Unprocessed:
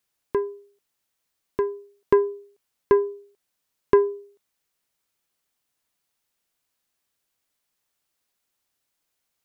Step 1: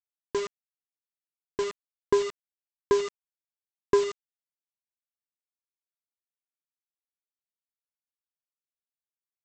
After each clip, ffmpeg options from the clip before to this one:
-af "bandreject=f=570:w=14,aresample=16000,acrusher=bits=4:mix=0:aa=0.000001,aresample=44100,volume=-5dB"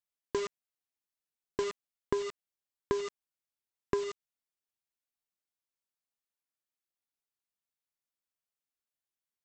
-af "acompressor=threshold=-28dB:ratio=6"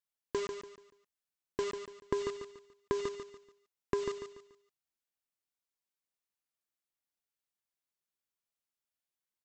-af "aecho=1:1:144|288|432|576:0.422|0.143|0.0487|0.0166,volume=-2dB"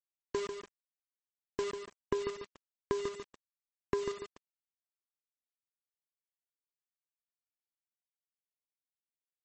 -af "aeval=exprs='val(0)*gte(abs(val(0)),0.00562)':c=same" -ar 48000 -c:a libmp3lame -b:a 32k

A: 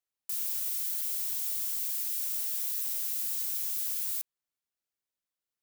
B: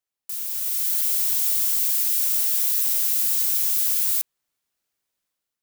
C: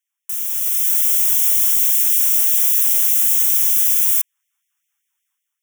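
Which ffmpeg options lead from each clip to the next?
-af "dynaudnorm=f=480:g=3:m=9dB,volume=2dB"
-af "asuperstop=centerf=4400:order=12:qfactor=2.5,afftfilt=real='re*gte(b*sr/1024,760*pow(1900/760,0.5+0.5*sin(2*PI*5.2*pts/sr)))':imag='im*gte(b*sr/1024,760*pow(1900/760,0.5+0.5*sin(2*PI*5.2*pts/sr)))':win_size=1024:overlap=0.75,volume=6.5dB"

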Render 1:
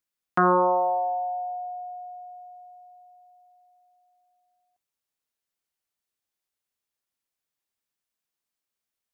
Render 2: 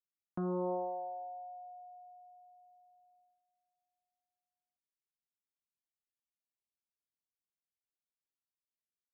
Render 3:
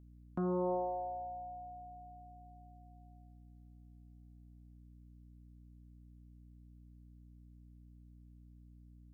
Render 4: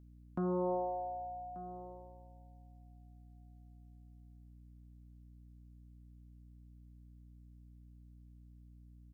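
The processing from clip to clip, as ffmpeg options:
-af "agate=range=-10dB:threshold=-56dB:ratio=16:detection=peak,firequalizer=gain_entry='entry(200,0);entry(740,-15);entry(1900,-29)':delay=0.05:min_phase=1,alimiter=level_in=3dB:limit=-24dB:level=0:latency=1,volume=-3dB,volume=-1dB"
-af "aeval=exprs='val(0)+0.00141*(sin(2*PI*60*n/s)+sin(2*PI*2*60*n/s)/2+sin(2*PI*3*60*n/s)/3+sin(2*PI*4*60*n/s)/4+sin(2*PI*5*60*n/s)/5)':c=same,volume=1dB"
-af "aecho=1:1:1185:0.141"

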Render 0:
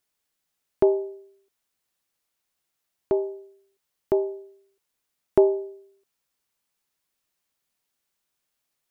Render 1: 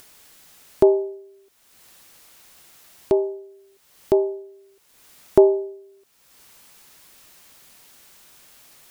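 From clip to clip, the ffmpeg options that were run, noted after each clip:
-af "acompressor=mode=upward:threshold=-35dB:ratio=2.5,volume=4.5dB"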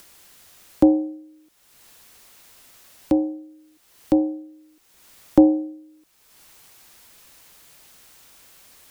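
-af "afreqshift=-82"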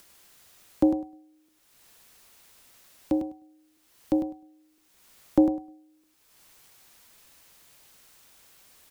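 -af "aecho=1:1:102|204|306:0.398|0.0637|0.0102,volume=-6.5dB"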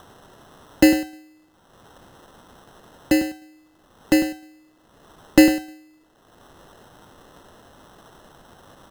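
-af "acrusher=samples=19:mix=1:aa=0.000001,volume=7.5dB"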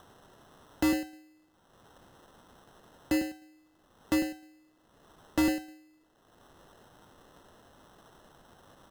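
-af "volume=13.5dB,asoftclip=hard,volume=-13.5dB,volume=-8.5dB"

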